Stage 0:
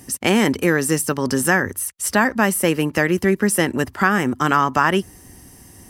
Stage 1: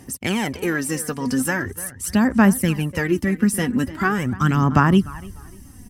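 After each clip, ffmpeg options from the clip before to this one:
-filter_complex "[0:a]asubboost=boost=5:cutoff=230,asplit=2[s0][s1];[s1]adelay=297,lowpass=f=2900:p=1,volume=0.168,asplit=2[s2][s3];[s3]adelay=297,lowpass=f=2900:p=1,volume=0.28,asplit=2[s4][s5];[s5]adelay=297,lowpass=f=2900:p=1,volume=0.28[s6];[s0][s2][s4][s6]amix=inputs=4:normalize=0,aphaser=in_gain=1:out_gain=1:delay=4.2:decay=0.59:speed=0.42:type=sinusoidal,volume=0.473"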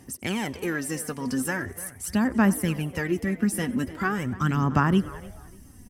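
-filter_complex "[0:a]asplit=6[s0][s1][s2][s3][s4][s5];[s1]adelay=93,afreqshift=110,volume=0.0708[s6];[s2]adelay=186,afreqshift=220,volume=0.0437[s7];[s3]adelay=279,afreqshift=330,volume=0.0272[s8];[s4]adelay=372,afreqshift=440,volume=0.0168[s9];[s5]adelay=465,afreqshift=550,volume=0.0105[s10];[s0][s6][s7][s8][s9][s10]amix=inputs=6:normalize=0,volume=0.501"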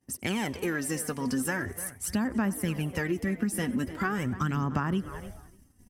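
-af "agate=range=0.0224:threshold=0.0126:ratio=3:detection=peak,acompressor=threshold=0.0562:ratio=6"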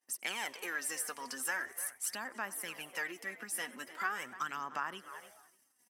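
-af "highpass=860,volume=0.75"

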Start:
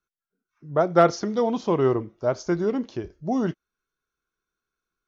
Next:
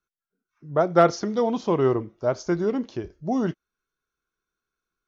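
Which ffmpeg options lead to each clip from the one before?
-af anull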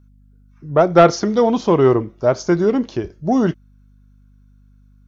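-af "aeval=exprs='val(0)+0.00141*(sin(2*PI*50*n/s)+sin(2*PI*2*50*n/s)/2+sin(2*PI*3*50*n/s)/3+sin(2*PI*4*50*n/s)/4+sin(2*PI*5*50*n/s)/5)':c=same,acontrast=73,volume=1.19"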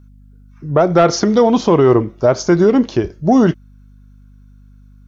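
-af "alimiter=limit=0.316:level=0:latency=1:release=101,volume=2.11"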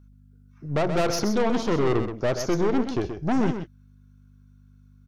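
-af "aeval=exprs='(tanh(5.62*val(0)+0.65)-tanh(0.65))/5.62':c=same,aecho=1:1:128:0.376,volume=0.562"

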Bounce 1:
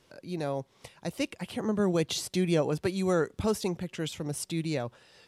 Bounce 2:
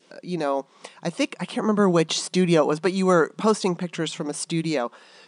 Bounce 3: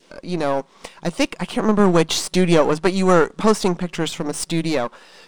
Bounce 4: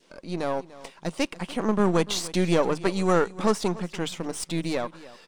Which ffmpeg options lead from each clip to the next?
-af "adynamicequalizer=threshold=0.00355:dfrequency=1100:dqfactor=1.9:tfrequency=1100:tqfactor=1.9:attack=5:release=100:ratio=0.375:range=4:mode=boostabove:tftype=bell,afftfilt=real='re*between(b*sr/4096,160,10000)':imag='im*between(b*sr/4096,160,10000)':win_size=4096:overlap=0.75,volume=2.24"
-af "aeval=exprs='if(lt(val(0),0),0.447*val(0),val(0))':c=same,volume=2.11"
-af "aecho=1:1:293:0.119,volume=0.447"

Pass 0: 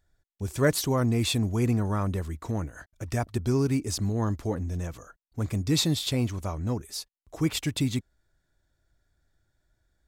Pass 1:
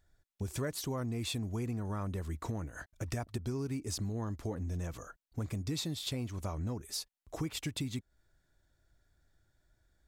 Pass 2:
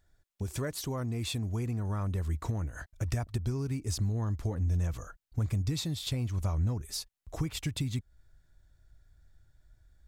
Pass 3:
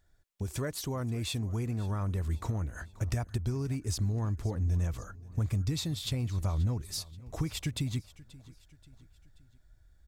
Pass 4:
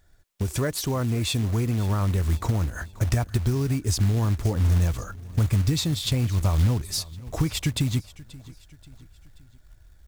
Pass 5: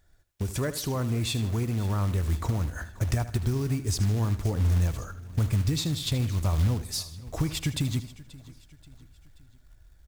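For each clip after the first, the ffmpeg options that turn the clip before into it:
-af "acompressor=threshold=0.02:ratio=6"
-af "asubboost=boost=3:cutoff=150,volume=1.19"
-af "aecho=1:1:531|1062|1593:0.1|0.046|0.0212"
-af "acrusher=bits=5:mode=log:mix=0:aa=0.000001,volume=2.66"
-af "aecho=1:1:78|156|234|312:0.211|0.0803|0.0305|0.0116,volume=0.668"

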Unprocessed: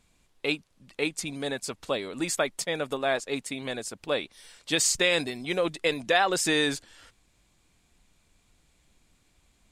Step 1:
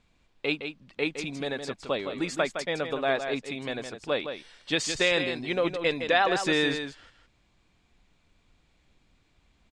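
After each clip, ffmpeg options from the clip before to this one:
-af "lowpass=4300,aecho=1:1:163:0.398"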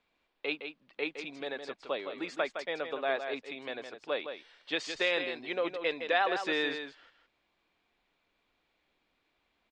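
-filter_complex "[0:a]acrossover=split=290 4900:gain=0.126 1 0.126[s0][s1][s2];[s0][s1][s2]amix=inputs=3:normalize=0,volume=0.596"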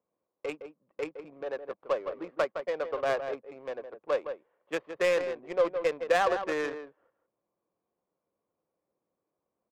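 -af "highpass=140,equalizer=f=260:t=q:w=4:g=-7,equalizer=f=530:t=q:w=4:g=8,equalizer=f=1100:t=q:w=4:g=8,lowpass=f=3100:w=0.5412,lowpass=f=3100:w=1.3066,adynamicsmooth=sensitivity=2.5:basefreq=540"

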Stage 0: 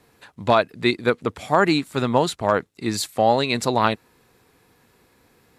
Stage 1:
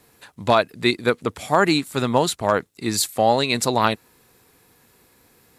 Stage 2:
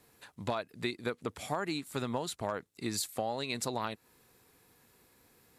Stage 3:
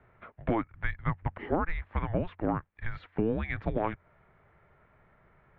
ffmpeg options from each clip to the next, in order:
-af "highshelf=f=6400:g=10.5"
-af "acompressor=threshold=0.0708:ratio=6,volume=0.398"
-af "bandreject=f=125:t=h:w=4,bandreject=f=250:t=h:w=4,highpass=f=270:t=q:w=0.5412,highpass=f=270:t=q:w=1.307,lowpass=f=2500:t=q:w=0.5176,lowpass=f=2500:t=q:w=0.7071,lowpass=f=2500:t=q:w=1.932,afreqshift=-340,volume=2.11"

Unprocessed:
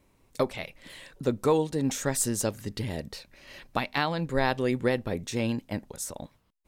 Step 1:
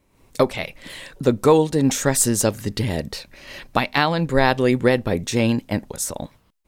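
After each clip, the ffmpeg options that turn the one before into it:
-af "dynaudnorm=f=100:g=3:m=2.99"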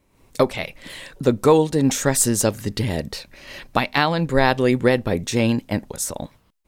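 -af anull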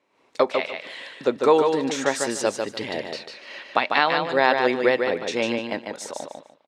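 -filter_complex "[0:a]highpass=430,lowpass=4200,asplit=2[s0][s1];[s1]aecho=0:1:148|296|444:0.562|0.124|0.0272[s2];[s0][s2]amix=inputs=2:normalize=0"

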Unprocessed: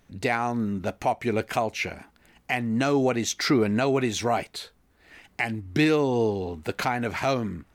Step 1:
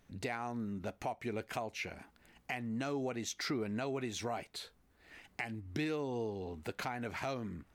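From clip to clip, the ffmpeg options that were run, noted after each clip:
-af "acompressor=threshold=0.0178:ratio=2,volume=0.501"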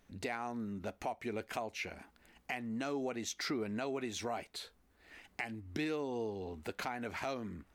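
-af "equalizer=f=130:t=o:w=0.47:g=-9"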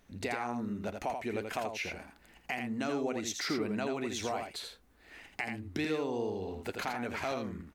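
-af "aecho=1:1:83:0.531,volume=1.41"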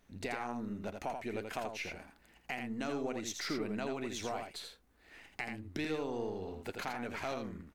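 -af "aeval=exprs='if(lt(val(0),0),0.708*val(0),val(0))':c=same,volume=0.75"

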